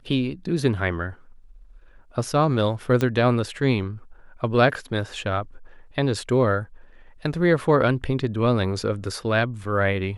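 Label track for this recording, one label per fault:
3.010000	3.010000	pop -11 dBFS

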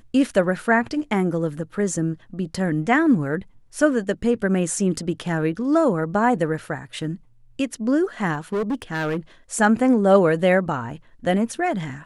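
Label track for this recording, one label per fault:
8.330000	9.170000	clipped -20 dBFS

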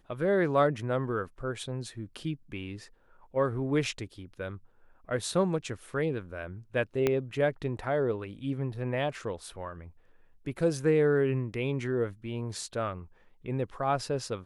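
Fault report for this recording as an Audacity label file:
7.070000	7.070000	pop -13 dBFS

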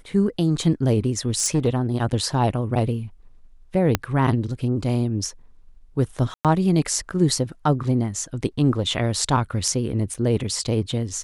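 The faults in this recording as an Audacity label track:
1.380000	1.680000	clipped -14.5 dBFS
3.950000	3.950000	pop -4 dBFS
6.340000	6.450000	gap 0.107 s
10.140000	10.140000	gap 4.7 ms

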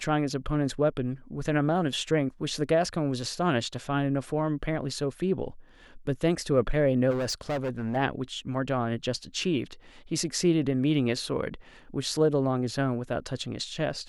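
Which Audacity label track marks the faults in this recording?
7.100000	7.970000	clipped -26 dBFS

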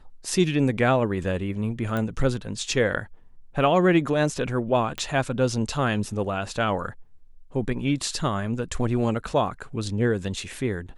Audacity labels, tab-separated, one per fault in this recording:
1.970000	1.970000	pop -16 dBFS
4.980000	4.980000	pop -16 dBFS

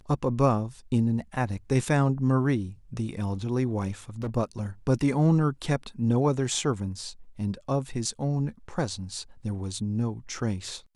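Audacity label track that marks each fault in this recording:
4.100000	4.370000	clipped -27 dBFS

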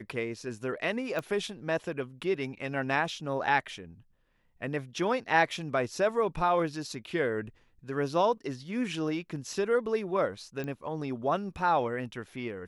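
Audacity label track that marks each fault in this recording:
1.190000	1.190000	pop -20 dBFS
10.640000	10.640000	pop -24 dBFS

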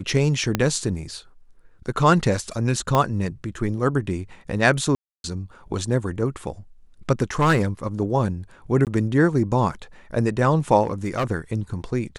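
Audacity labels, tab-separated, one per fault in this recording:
0.550000	0.550000	pop -6 dBFS
2.950000	2.950000	pop -7 dBFS
4.950000	5.240000	gap 0.291 s
7.390000	7.650000	clipped -13 dBFS
8.850000	8.870000	gap 18 ms
10.830000	11.240000	clipped -18 dBFS

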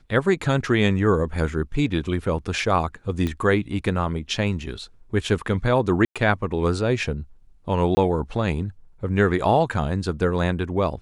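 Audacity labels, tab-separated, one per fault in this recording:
3.270000	3.270000	pop -14 dBFS
6.050000	6.160000	gap 0.106 s
7.950000	7.970000	gap 20 ms

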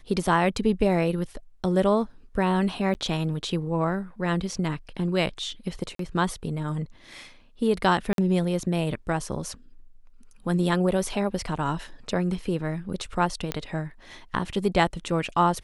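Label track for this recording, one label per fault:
2.940000	2.950000	gap 9.4 ms
5.950000	5.990000	gap 43 ms
8.130000	8.180000	gap 52 ms
13.520000	13.520000	pop -11 dBFS

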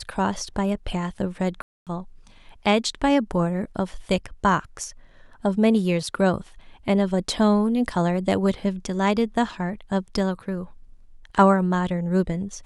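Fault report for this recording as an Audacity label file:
1.620000	1.870000	gap 0.247 s

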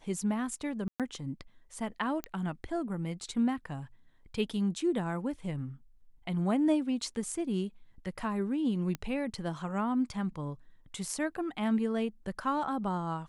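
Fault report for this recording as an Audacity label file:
0.880000	1.000000	gap 0.117 s
2.240000	2.240000	pop -20 dBFS
8.950000	8.950000	pop -21 dBFS

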